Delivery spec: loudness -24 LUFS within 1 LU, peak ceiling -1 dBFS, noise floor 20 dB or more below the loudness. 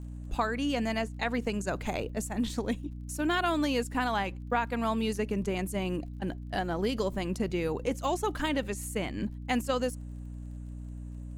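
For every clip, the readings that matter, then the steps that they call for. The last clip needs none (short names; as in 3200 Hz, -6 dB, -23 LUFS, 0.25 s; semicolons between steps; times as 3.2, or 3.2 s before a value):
ticks 31/s; hum 60 Hz; harmonics up to 300 Hz; hum level -38 dBFS; loudness -31.5 LUFS; peak -15.0 dBFS; loudness target -24.0 LUFS
-> de-click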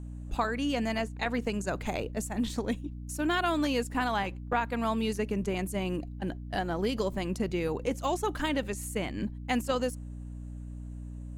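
ticks 0/s; hum 60 Hz; harmonics up to 300 Hz; hum level -38 dBFS
-> de-hum 60 Hz, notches 5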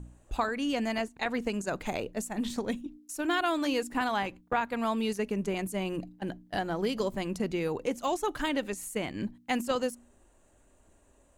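hum none; loudness -32.0 LUFS; peak -15.5 dBFS; loudness target -24.0 LUFS
-> gain +8 dB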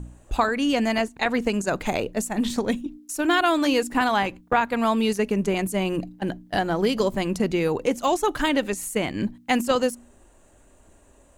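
loudness -24.0 LUFS; peak -7.5 dBFS; noise floor -55 dBFS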